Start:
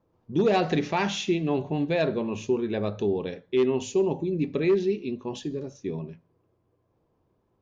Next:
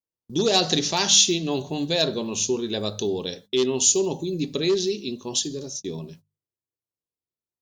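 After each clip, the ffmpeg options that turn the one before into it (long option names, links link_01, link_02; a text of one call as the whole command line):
ffmpeg -i in.wav -af "agate=range=-31dB:threshold=-46dB:ratio=16:detection=peak,bandreject=frequency=50:width_type=h:width=6,bandreject=frequency=100:width_type=h:width=6,bandreject=frequency=150:width_type=h:width=6,bandreject=frequency=200:width_type=h:width=6,aexciter=amount=12.6:drive=3.2:freq=3400" out.wav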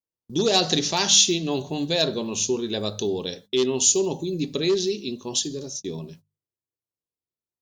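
ffmpeg -i in.wav -af anull out.wav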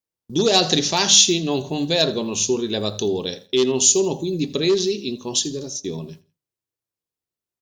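ffmpeg -i in.wav -af "aecho=1:1:83|166:0.1|0.031,volume=3.5dB" out.wav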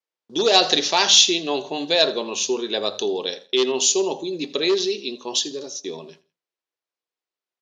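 ffmpeg -i in.wav -af "highpass=460,lowpass=4700,volume=3dB" out.wav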